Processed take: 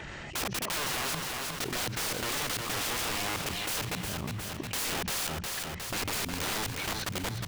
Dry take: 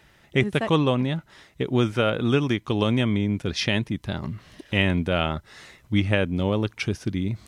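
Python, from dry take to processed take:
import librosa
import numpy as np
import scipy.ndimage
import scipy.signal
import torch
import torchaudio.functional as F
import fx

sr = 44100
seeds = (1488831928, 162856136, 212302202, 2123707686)

p1 = fx.freq_compress(x, sr, knee_hz=2200.0, ratio=1.5)
p2 = fx.hum_notches(p1, sr, base_hz=60, count=3)
p3 = fx.leveller(p2, sr, passes=1)
p4 = fx.level_steps(p3, sr, step_db=22)
p5 = (np.mod(10.0 ** (28.0 / 20.0) * p4 + 1.0, 2.0) - 1.0) / 10.0 ** (28.0 / 20.0)
p6 = p5 + fx.echo_feedback(p5, sr, ms=360, feedback_pct=37, wet_db=-11, dry=0)
y = fx.env_flatten(p6, sr, amount_pct=70)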